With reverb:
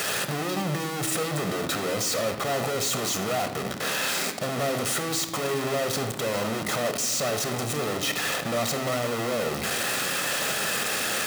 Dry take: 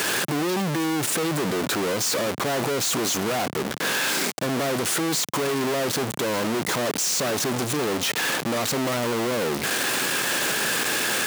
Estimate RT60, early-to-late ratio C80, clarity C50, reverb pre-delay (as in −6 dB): 1.0 s, 12.5 dB, 10.0 dB, 25 ms